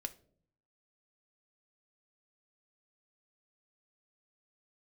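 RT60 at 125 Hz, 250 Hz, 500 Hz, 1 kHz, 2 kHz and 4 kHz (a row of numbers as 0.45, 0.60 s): 0.95, 0.85, 0.70, 0.45, 0.35, 0.30 s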